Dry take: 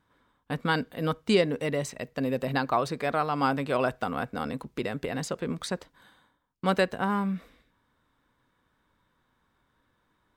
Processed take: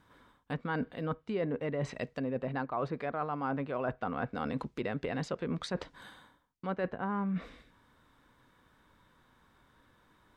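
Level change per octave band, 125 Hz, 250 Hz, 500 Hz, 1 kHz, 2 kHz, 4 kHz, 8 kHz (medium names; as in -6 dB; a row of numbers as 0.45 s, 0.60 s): -4.5 dB, -5.5 dB, -7.0 dB, -7.5 dB, -8.5 dB, -12.0 dB, -13.5 dB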